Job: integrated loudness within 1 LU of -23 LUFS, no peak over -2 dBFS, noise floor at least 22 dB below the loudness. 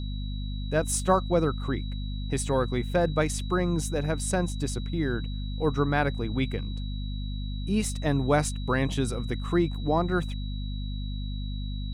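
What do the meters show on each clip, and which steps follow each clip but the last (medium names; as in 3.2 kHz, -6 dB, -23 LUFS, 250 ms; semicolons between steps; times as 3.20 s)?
hum 50 Hz; highest harmonic 250 Hz; hum level -30 dBFS; steady tone 3.9 kHz; tone level -45 dBFS; loudness -28.5 LUFS; peak level -9.5 dBFS; loudness target -23.0 LUFS
-> hum notches 50/100/150/200/250 Hz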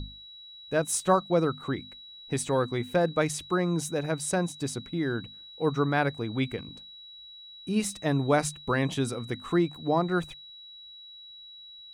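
hum not found; steady tone 3.9 kHz; tone level -45 dBFS
-> band-stop 3.9 kHz, Q 30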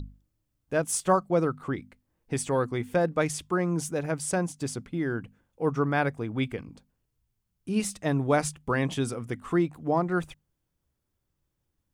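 steady tone not found; loudness -28.5 LUFS; peak level -10.5 dBFS; loudness target -23.0 LUFS
-> trim +5.5 dB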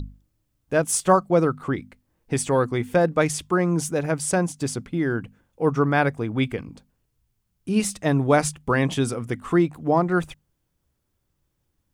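loudness -23.0 LUFS; peak level -5.0 dBFS; noise floor -75 dBFS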